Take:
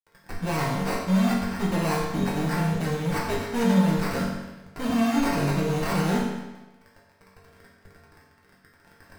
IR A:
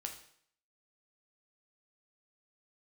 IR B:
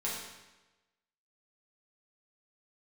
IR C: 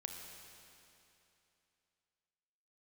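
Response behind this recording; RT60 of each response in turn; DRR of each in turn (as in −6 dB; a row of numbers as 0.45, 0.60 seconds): B; 0.60, 1.1, 2.9 seconds; 3.0, −6.5, 2.5 decibels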